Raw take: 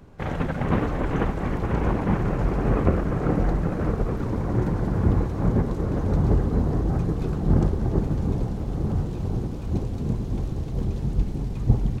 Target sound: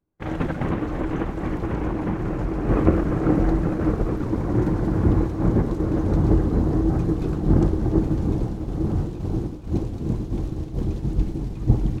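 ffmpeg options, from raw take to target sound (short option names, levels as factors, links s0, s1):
-filter_complex "[0:a]agate=range=0.0224:threshold=0.0631:ratio=3:detection=peak,equalizer=f=320:w=7.5:g=11.5,asettb=1/sr,asplit=3[s0][s1][s2];[s0]atrim=end=0.654[s3];[s1]atrim=start=0.65:end=2.69,asetpts=PTS-STARTPTS,afade=t=in:d=0.004:c=qsin,afade=t=out:st=2.036:d=0.004:c=qsin,acompressor=threshold=0.0794:ratio=6[s4];[s2]atrim=start=2.686[s5];[s3][s4]acrossfade=d=0.004:c1=hsin:c2=qsin[s6];[s6][s5]acrossfade=d=0.004:c1=qsin:c2=hsin,volume=1.12"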